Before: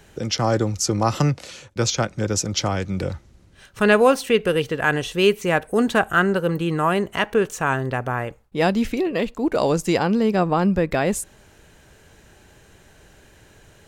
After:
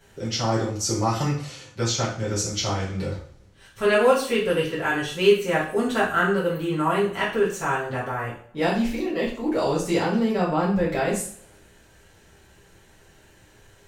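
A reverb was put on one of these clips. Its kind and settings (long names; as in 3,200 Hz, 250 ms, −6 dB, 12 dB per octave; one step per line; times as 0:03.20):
coupled-rooms reverb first 0.45 s, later 1.6 s, from −27 dB, DRR −8.5 dB
level −11.5 dB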